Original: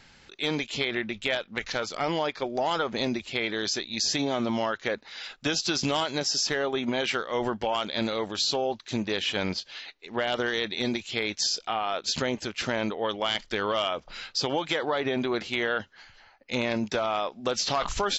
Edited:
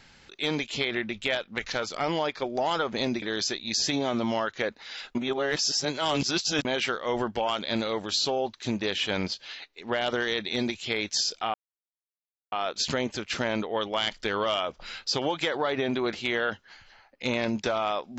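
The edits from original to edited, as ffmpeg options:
-filter_complex "[0:a]asplit=5[a][b][c][d][e];[a]atrim=end=3.222[f];[b]atrim=start=3.478:end=5.412[g];[c]atrim=start=5.408:end=6.912,asetpts=PTS-STARTPTS,areverse[h];[d]atrim=start=6.908:end=11.8,asetpts=PTS-STARTPTS,afade=t=out:st=4.888:d=0.004:c=hsin,apad=pad_dur=0.98[i];[e]atrim=start=11.8,asetpts=PTS-STARTPTS,afade=t=in:d=0.004:c=hsin[j];[f][g]acrossfade=d=0.004:c1=hsin:c2=hsin[k];[k][h]acrossfade=d=0.004:c1=hsin:c2=hsin[l];[i][j]concat=n=2:v=0:a=1[m];[l][m]acrossfade=d=0.004:c1=hsin:c2=hsin"

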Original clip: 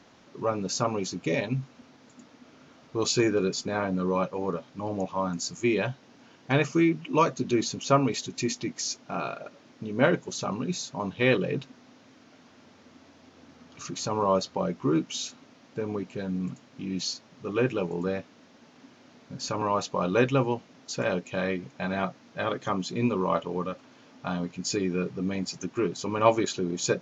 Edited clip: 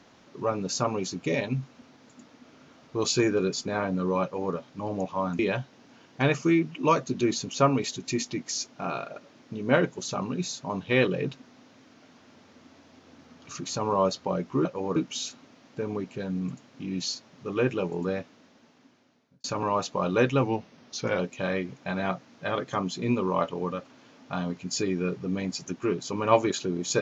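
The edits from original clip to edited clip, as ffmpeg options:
-filter_complex "[0:a]asplit=7[a][b][c][d][e][f][g];[a]atrim=end=5.392[h];[b]atrim=start=5.688:end=14.952[i];[c]atrim=start=4.228:end=4.542[j];[d]atrim=start=14.948:end=19.43,asetpts=PTS-STARTPTS,afade=t=out:st=3.232:d=1.25[k];[e]atrim=start=19.43:end=20.424,asetpts=PTS-STARTPTS,afade=t=in:d=0.004:c=hsin[l];[f]atrim=start=20.42:end=21.13,asetpts=PTS-STARTPTS,asetrate=41013,aresample=44100[m];[g]atrim=start=21.126[n];[h][i]acrossfade=d=0.004:c1=hsin:c2=hsin[o];[o][j]acrossfade=d=0.004:c1=hsin:c2=hsin[p];[k][l]concat=n=2:v=0:a=1[q];[p][q]acrossfade=d=0.004:c1=hsin:c2=hsin[r];[r][m]acrossfade=d=0.004:c1=hsin:c2=hsin[s];[s][n]acrossfade=d=0.004:c1=hsin:c2=hsin"

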